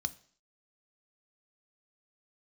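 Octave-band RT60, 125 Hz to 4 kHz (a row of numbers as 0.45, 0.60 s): 0.45, 0.55, 0.55, 0.50, 0.50, 0.60 s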